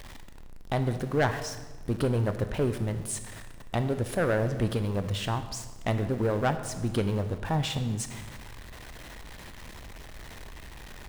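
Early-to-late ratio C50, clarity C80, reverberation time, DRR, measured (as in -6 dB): 11.0 dB, 12.0 dB, 1.3 s, 9.0 dB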